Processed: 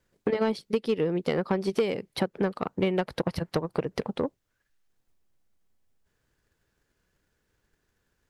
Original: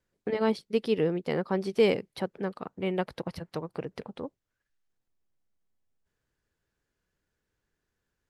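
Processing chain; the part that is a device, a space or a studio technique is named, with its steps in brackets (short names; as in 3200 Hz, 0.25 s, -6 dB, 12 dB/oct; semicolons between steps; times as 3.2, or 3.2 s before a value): drum-bus smash (transient shaper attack +7 dB, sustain 0 dB; compressor 8:1, threshold -27 dBFS, peak gain reduction 15.5 dB; soft clip -22.5 dBFS, distortion -16 dB); gain +7 dB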